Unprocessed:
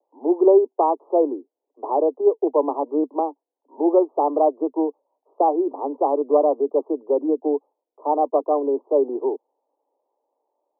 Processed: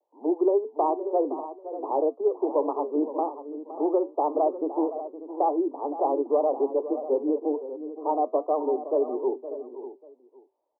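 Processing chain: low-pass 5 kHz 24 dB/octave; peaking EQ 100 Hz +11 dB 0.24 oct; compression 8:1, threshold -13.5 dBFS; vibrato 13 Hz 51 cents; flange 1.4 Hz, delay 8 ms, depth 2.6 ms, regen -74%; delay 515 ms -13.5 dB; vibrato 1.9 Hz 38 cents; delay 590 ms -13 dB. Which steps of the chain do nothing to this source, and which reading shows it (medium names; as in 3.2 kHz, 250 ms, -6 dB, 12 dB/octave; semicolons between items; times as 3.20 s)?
low-pass 5 kHz: input has nothing above 1.2 kHz; peaking EQ 100 Hz: input has nothing below 240 Hz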